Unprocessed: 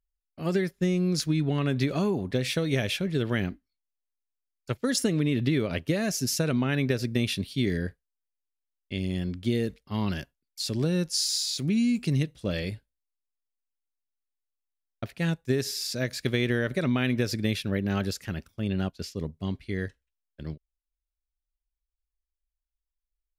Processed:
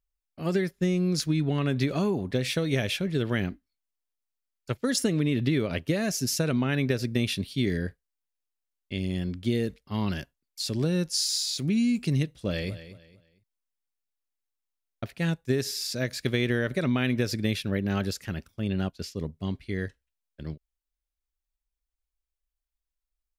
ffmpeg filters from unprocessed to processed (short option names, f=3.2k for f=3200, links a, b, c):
-filter_complex "[0:a]asplit=2[a][b];[b]afade=t=in:st=12.33:d=0.01,afade=t=out:st=12.74:d=0.01,aecho=0:1:230|460|690:0.199526|0.0598579|0.0179574[c];[a][c]amix=inputs=2:normalize=0"